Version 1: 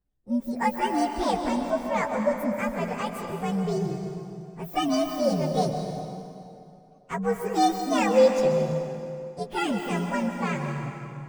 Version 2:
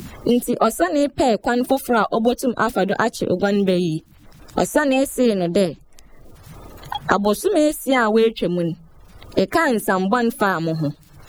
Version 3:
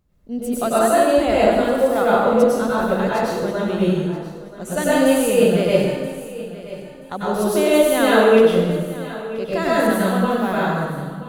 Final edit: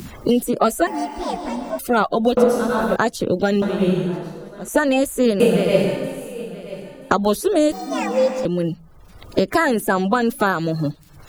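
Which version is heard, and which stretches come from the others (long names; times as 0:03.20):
2
0:00.87–0:01.79: punch in from 1
0:02.37–0:02.96: punch in from 3
0:03.62–0:04.68: punch in from 3
0:05.40–0:07.11: punch in from 3
0:07.72–0:08.45: punch in from 1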